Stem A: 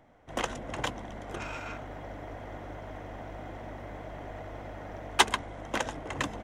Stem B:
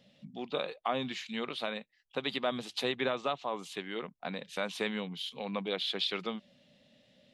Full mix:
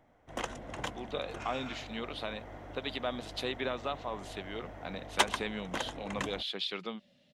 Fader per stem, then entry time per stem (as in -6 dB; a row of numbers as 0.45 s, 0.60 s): -5.0 dB, -3.0 dB; 0.00 s, 0.60 s